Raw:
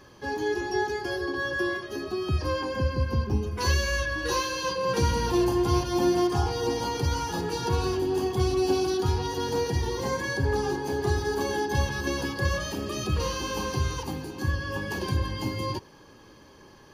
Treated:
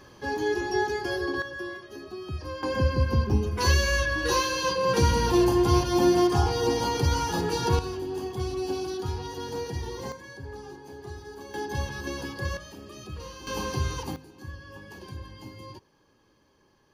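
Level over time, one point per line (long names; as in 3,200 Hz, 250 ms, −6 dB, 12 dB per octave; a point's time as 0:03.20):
+1 dB
from 0:01.42 −8 dB
from 0:02.63 +2.5 dB
from 0:07.79 −6 dB
from 0:10.12 −14.5 dB
from 0:11.54 −5 dB
from 0:12.57 −12 dB
from 0:13.47 −1 dB
from 0:14.16 −13 dB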